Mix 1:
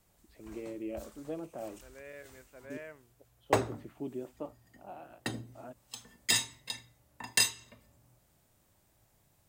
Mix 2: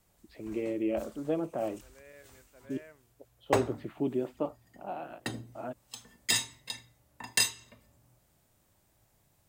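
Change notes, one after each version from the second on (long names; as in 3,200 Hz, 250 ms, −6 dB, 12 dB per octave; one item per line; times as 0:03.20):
first voice +8.5 dB
second voice −5.5 dB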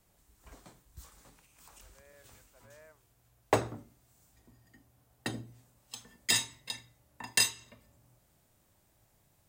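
first voice: muted
second voice: add resonant band-pass 980 Hz, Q 1.4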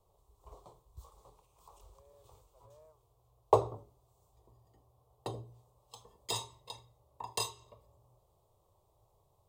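speech −5.0 dB
master: add drawn EQ curve 110 Hz 0 dB, 260 Hz −16 dB, 410 Hz +5 dB, 700 Hz +1 dB, 1,100 Hz +5 dB, 1,600 Hz −26 dB, 3,500 Hz −7 dB, 5,300 Hz −11 dB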